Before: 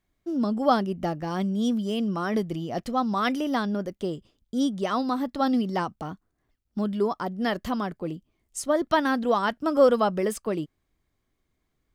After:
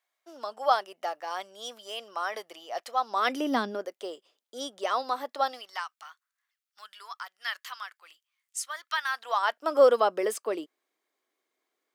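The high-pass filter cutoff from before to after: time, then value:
high-pass filter 24 dB per octave
0:02.97 620 Hz
0:03.58 220 Hz
0:03.89 480 Hz
0:05.39 480 Hz
0:05.87 1,300 Hz
0:09.02 1,300 Hz
0:09.80 370 Hz

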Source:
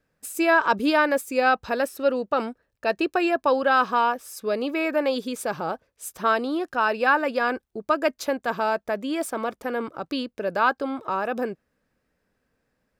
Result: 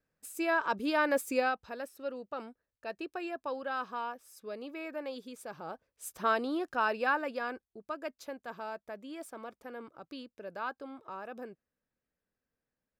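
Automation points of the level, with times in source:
0:00.87 −10.5 dB
0:01.31 −3 dB
0:01.59 −16 dB
0:05.54 −16 dB
0:06.08 −7 dB
0:06.82 −7 dB
0:07.89 −16.5 dB

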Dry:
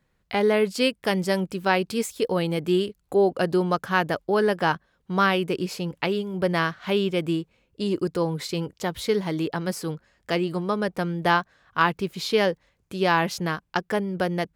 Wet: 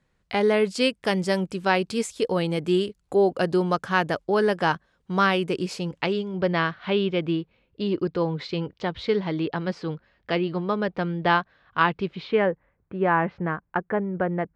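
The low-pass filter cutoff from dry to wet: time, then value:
low-pass filter 24 dB per octave
0:05.76 9,600 Hz
0:06.60 4,200 Hz
0:12.06 4,200 Hz
0:12.49 1,900 Hz

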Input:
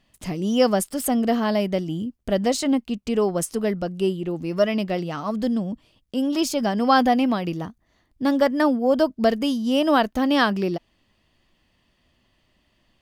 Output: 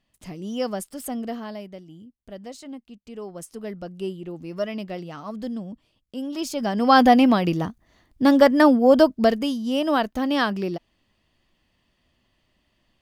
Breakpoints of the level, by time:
0:01.21 −8.5 dB
0:01.79 −17 dB
0:03.01 −17 dB
0:03.92 −7.5 dB
0:06.34 −7.5 dB
0:07.09 +4.5 dB
0:09.00 +4.5 dB
0:09.55 −3 dB

